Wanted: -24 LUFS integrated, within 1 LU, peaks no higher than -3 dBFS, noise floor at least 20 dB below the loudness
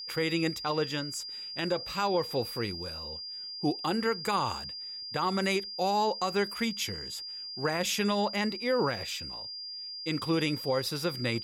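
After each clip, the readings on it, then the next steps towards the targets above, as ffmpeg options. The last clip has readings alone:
steady tone 4800 Hz; tone level -38 dBFS; loudness -31.0 LUFS; peak -17.5 dBFS; loudness target -24.0 LUFS
-> -af "bandreject=f=4.8k:w=30"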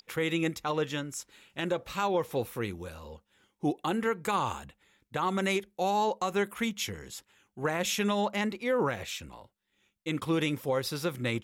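steady tone none; loudness -31.0 LUFS; peak -18.5 dBFS; loudness target -24.0 LUFS
-> -af "volume=7dB"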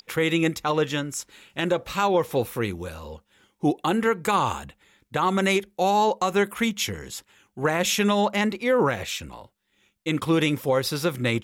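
loudness -24.0 LUFS; peak -11.5 dBFS; noise floor -72 dBFS

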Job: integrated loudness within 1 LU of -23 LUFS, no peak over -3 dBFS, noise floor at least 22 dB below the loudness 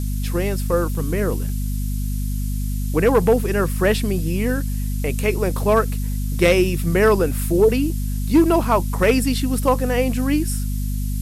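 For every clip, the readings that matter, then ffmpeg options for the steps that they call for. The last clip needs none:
hum 50 Hz; harmonics up to 250 Hz; hum level -21 dBFS; noise floor -23 dBFS; noise floor target -42 dBFS; loudness -20.0 LUFS; peak -5.0 dBFS; loudness target -23.0 LUFS
-> -af "bandreject=f=50:t=h:w=4,bandreject=f=100:t=h:w=4,bandreject=f=150:t=h:w=4,bandreject=f=200:t=h:w=4,bandreject=f=250:t=h:w=4"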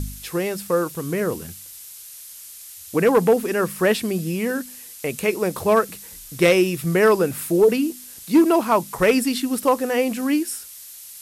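hum none; noise floor -41 dBFS; noise floor target -43 dBFS
-> -af "afftdn=nr=6:nf=-41"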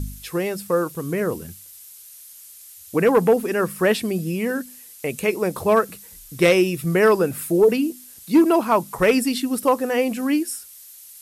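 noise floor -44 dBFS; loudness -20.5 LUFS; peak -7.0 dBFS; loudness target -23.0 LUFS
-> -af "volume=-2.5dB"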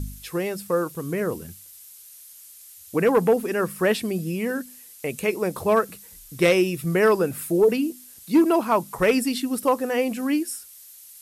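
loudness -23.0 LUFS; peak -9.5 dBFS; noise floor -47 dBFS

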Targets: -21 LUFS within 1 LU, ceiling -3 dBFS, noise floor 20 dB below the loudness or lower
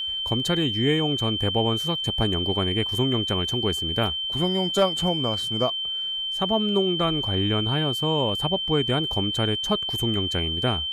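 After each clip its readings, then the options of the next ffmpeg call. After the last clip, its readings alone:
steady tone 3100 Hz; tone level -26 dBFS; loudness -23.5 LUFS; peak -10.0 dBFS; loudness target -21.0 LUFS
-> -af "bandreject=f=3.1k:w=30"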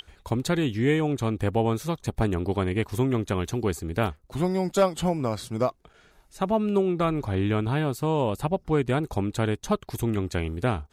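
steady tone none; loudness -26.5 LUFS; peak -11.0 dBFS; loudness target -21.0 LUFS
-> -af "volume=5.5dB"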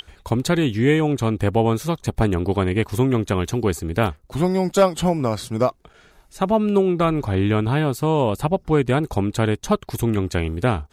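loudness -21.0 LUFS; peak -5.5 dBFS; noise floor -55 dBFS

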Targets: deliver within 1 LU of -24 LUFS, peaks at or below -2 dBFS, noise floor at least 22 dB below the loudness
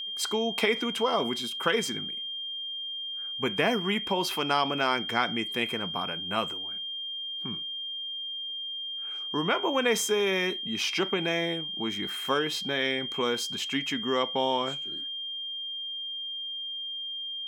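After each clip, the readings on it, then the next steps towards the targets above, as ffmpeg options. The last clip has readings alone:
steady tone 3200 Hz; tone level -33 dBFS; loudness -29.0 LUFS; peak -10.5 dBFS; loudness target -24.0 LUFS
-> -af "bandreject=f=3.2k:w=30"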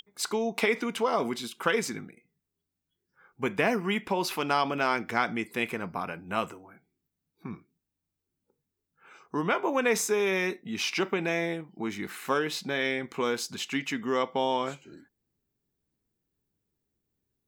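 steady tone none; loudness -29.5 LUFS; peak -11.0 dBFS; loudness target -24.0 LUFS
-> -af "volume=5.5dB"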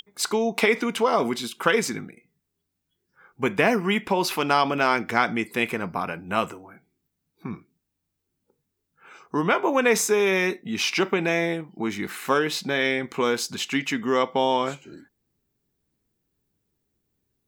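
loudness -24.0 LUFS; peak -5.5 dBFS; noise floor -80 dBFS

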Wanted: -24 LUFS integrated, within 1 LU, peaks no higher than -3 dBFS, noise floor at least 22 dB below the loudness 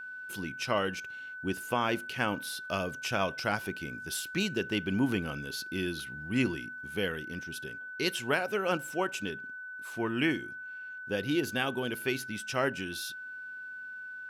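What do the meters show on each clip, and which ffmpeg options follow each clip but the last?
steady tone 1500 Hz; tone level -40 dBFS; loudness -33.0 LUFS; peak -15.0 dBFS; loudness target -24.0 LUFS
-> -af "bandreject=f=1.5k:w=30"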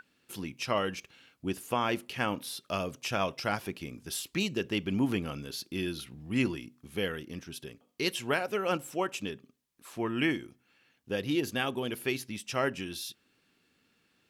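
steady tone none; loudness -33.0 LUFS; peak -14.5 dBFS; loudness target -24.0 LUFS
-> -af "volume=9dB"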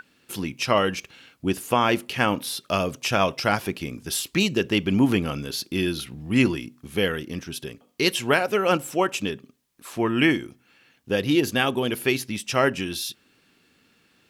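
loudness -24.0 LUFS; peak -5.5 dBFS; noise floor -63 dBFS

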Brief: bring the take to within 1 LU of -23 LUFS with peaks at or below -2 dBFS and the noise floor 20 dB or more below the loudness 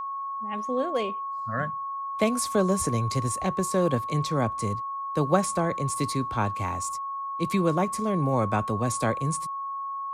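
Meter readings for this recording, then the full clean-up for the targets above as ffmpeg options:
steady tone 1100 Hz; tone level -30 dBFS; loudness -27.5 LUFS; peak -9.0 dBFS; loudness target -23.0 LUFS
-> -af "bandreject=f=1.1k:w=30"
-af "volume=4.5dB"

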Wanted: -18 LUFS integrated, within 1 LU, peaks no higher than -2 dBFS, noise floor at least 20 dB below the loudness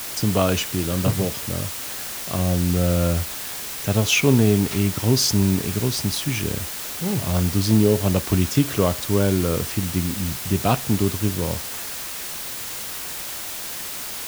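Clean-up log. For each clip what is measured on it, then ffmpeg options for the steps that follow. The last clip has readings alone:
noise floor -32 dBFS; noise floor target -42 dBFS; loudness -22.0 LUFS; peak -4.5 dBFS; loudness target -18.0 LUFS
-> -af "afftdn=nr=10:nf=-32"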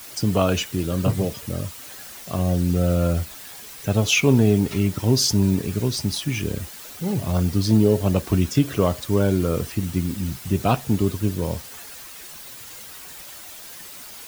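noise floor -40 dBFS; noise floor target -42 dBFS
-> -af "afftdn=nr=6:nf=-40"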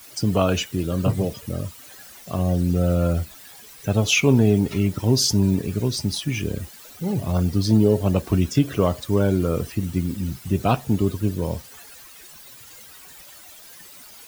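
noise floor -45 dBFS; loudness -22.0 LUFS; peak -5.0 dBFS; loudness target -18.0 LUFS
-> -af "volume=4dB,alimiter=limit=-2dB:level=0:latency=1"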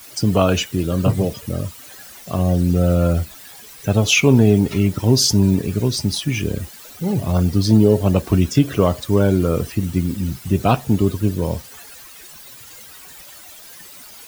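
loudness -18.0 LUFS; peak -2.0 dBFS; noise floor -41 dBFS

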